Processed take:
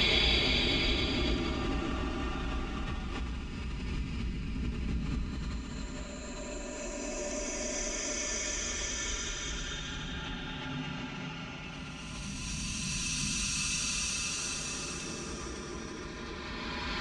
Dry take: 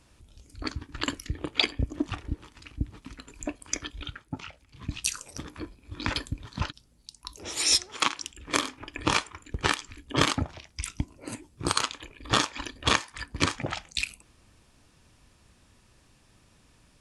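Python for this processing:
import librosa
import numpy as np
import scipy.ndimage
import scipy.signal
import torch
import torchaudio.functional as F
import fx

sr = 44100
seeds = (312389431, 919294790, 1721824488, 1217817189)

y = scipy.signal.sosfilt(scipy.signal.butter(4, 7900.0, 'lowpass', fs=sr, output='sos'), x)
y = y + 0.73 * np.pad(y, (int(5.0 * sr / 1000.0), 0))[:len(y)]
y = fx.paulstretch(y, sr, seeds[0], factor=4.0, window_s=1.0, from_s=1.64)
y = fx.pre_swell(y, sr, db_per_s=24.0)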